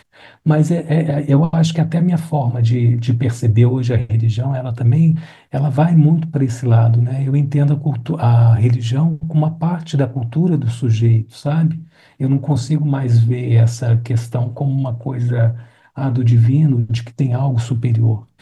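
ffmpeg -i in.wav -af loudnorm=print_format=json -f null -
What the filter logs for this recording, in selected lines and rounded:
"input_i" : "-16.2",
"input_tp" : "-1.5",
"input_lra" : "2.1",
"input_thresh" : "-26.4",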